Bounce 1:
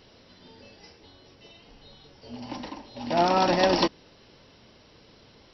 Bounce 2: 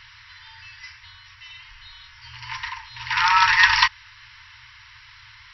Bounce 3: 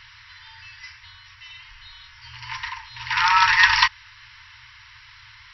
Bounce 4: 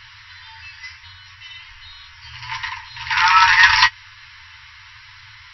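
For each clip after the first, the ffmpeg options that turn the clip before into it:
ffmpeg -i in.wav -af "equalizer=frequency=1900:width=1.3:gain=13.5,afftfilt=real='re*(1-between(b*sr/4096,120,880))':imag='im*(1-between(b*sr/4096,120,880))':win_size=4096:overlap=0.75,volume=5dB" out.wav
ffmpeg -i in.wav -af anull out.wav
ffmpeg -i in.wav -af "flanger=delay=9.9:depth=2.6:regen=39:speed=0.77:shape=sinusoidal,apsyclip=9.5dB,volume=-1.5dB" out.wav

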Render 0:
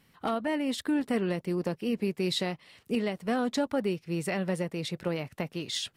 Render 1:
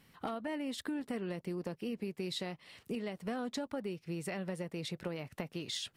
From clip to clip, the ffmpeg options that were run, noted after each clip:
ffmpeg -i in.wav -af "acompressor=threshold=-37dB:ratio=4" out.wav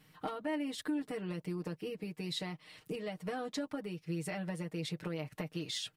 ffmpeg -i in.wav -af "aecho=1:1:6.5:0.85,volume=-2dB" out.wav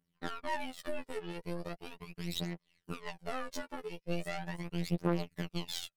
ffmpeg -i in.wav -af "aeval=exprs='0.0562*(cos(1*acos(clip(val(0)/0.0562,-1,1)))-cos(1*PI/2))+0.0126*(cos(2*acos(clip(val(0)/0.0562,-1,1)))-cos(2*PI/2))+0.001*(cos(3*acos(clip(val(0)/0.0562,-1,1)))-cos(3*PI/2))+0.00708*(cos(7*acos(clip(val(0)/0.0562,-1,1)))-cos(7*PI/2))':channel_layout=same,afftfilt=real='hypot(re,im)*cos(PI*b)':imag='0':win_size=2048:overlap=0.75,aphaser=in_gain=1:out_gain=1:delay=2.4:decay=0.65:speed=0.39:type=triangular,volume=2.5dB" out.wav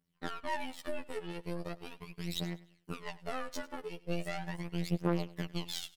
ffmpeg -i in.wav -af "aecho=1:1:99|198|297:0.1|0.034|0.0116" out.wav

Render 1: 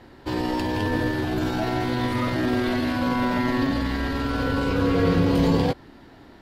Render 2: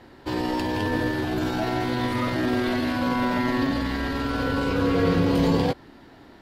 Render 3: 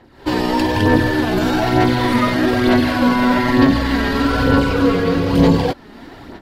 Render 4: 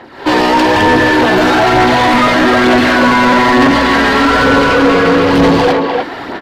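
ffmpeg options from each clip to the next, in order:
ffmpeg -i in.wav -af "lowshelf=frequency=130:gain=-4" out.wav
ffmpeg -i in.wav -af "dynaudnorm=framelen=120:gausssize=3:maxgain=15dB,aphaser=in_gain=1:out_gain=1:delay=4.9:decay=0.43:speed=1.1:type=sinusoidal,volume=-4dB" out.wav
ffmpeg -i in.wav -filter_complex "[0:a]asplit=2[link_01][link_02];[link_02]adelay=300,highpass=300,lowpass=3400,asoftclip=type=hard:threshold=-10dB,volume=-7dB[link_03];[link_01][link_03]amix=inputs=2:normalize=0,asplit=2[link_04][link_05];[link_05]highpass=frequency=720:poles=1,volume=25dB,asoftclip=type=tanh:threshold=-1dB[link_06];[link_04][link_06]amix=inputs=2:normalize=0,lowpass=frequency=2300:poles=1,volume=-6dB" out.wav

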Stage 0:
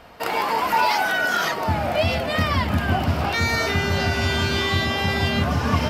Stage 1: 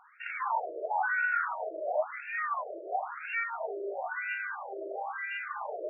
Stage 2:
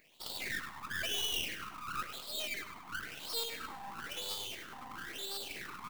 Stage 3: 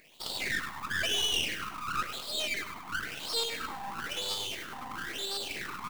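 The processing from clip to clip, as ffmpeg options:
ffmpeg -i in.wav -af "afftfilt=real='re*between(b*sr/1024,460*pow(2000/460,0.5+0.5*sin(2*PI*0.98*pts/sr))/1.41,460*pow(2000/460,0.5+0.5*sin(2*PI*0.98*pts/sr))*1.41)':imag='im*between(b*sr/1024,460*pow(2000/460,0.5+0.5*sin(2*PI*0.98*pts/sr))/1.41,460*pow(2000/460,0.5+0.5*sin(2*PI*0.98*pts/sr))*1.41)':win_size=1024:overlap=0.75,volume=-6dB" out.wav
ffmpeg -i in.wav -af "aeval=exprs='abs(val(0))':channel_layout=same,aemphasis=mode=production:type=bsi,aecho=1:1:100|200|300|400:0.266|0.114|0.0492|0.0212,volume=-3.5dB" out.wav
ffmpeg -i in.wav -filter_complex "[0:a]acrossover=split=9700[link_01][link_02];[link_02]acompressor=threshold=-51dB:ratio=4:attack=1:release=60[link_03];[link_01][link_03]amix=inputs=2:normalize=0,volume=6.5dB" out.wav

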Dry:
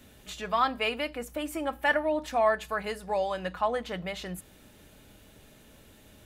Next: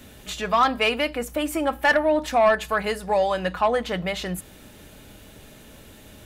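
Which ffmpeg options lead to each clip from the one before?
ffmpeg -i in.wav -af "aeval=exprs='0.266*(cos(1*acos(clip(val(0)/0.266,-1,1)))-cos(1*PI/2))+0.0299*(cos(5*acos(clip(val(0)/0.266,-1,1)))-cos(5*PI/2))':channel_layout=same,volume=4.5dB" out.wav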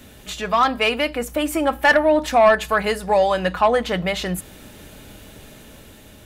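ffmpeg -i in.wav -af "dynaudnorm=framelen=430:gausssize=5:maxgain=3dB,volume=1.5dB" out.wav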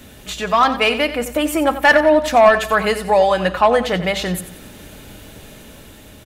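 ffmpeg -i in.wav -af "aecho=1:1:90|180|270|360:0.237|0.0949|0.0379|0.0152,volume=3dB" out.wav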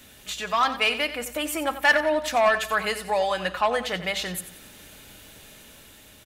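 ffmpeg -i in.wav -af "tiltshelf=frequency=970:gain=-5,volume=-8.5dB" out.wav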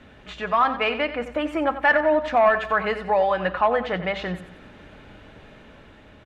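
ffmpeg -i in.wav -filter_complex "[0:a]lowpass=1700,asplit=2[link_01][link_02];[link_02]alimiter=limit=-20.5dB:level=0:latency=1:release=239,volume=-3dB[link_03];[link_01][link_03]amix=inputs=2:normalize=0,volume=1dB" out.wav

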